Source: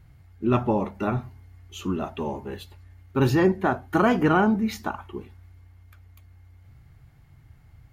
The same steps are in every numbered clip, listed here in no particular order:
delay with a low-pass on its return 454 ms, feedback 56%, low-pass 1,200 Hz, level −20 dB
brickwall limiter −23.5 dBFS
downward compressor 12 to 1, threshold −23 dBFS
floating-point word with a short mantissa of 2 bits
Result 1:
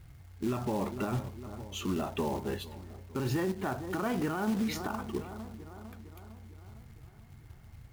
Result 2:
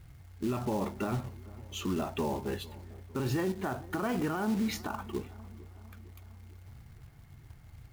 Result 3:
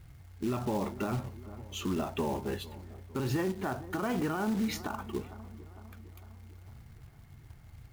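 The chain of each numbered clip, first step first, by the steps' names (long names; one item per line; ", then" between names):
delay with a low-pass on its return, then floating-point word with a short mantissa, then downward compressor, then brickwall limiter
downward compressor, then brickwall limiter, then floating-point word with a short mantissa, then delay with a low-pass on its return
downward compressor, then floating-point word with a short mantissa, then delay with a low-pass on its return, then brickwall limiter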